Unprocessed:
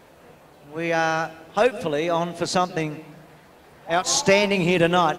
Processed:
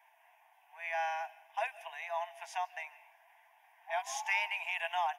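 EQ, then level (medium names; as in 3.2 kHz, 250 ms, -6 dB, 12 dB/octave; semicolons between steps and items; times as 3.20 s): rippled Chebyshev high-pass 640 Hz, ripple 3 dB; peaking EQ 7.8 kHz -12 dB 0.35 oct; static phaser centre 860 Hz, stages 8; -8.0 dB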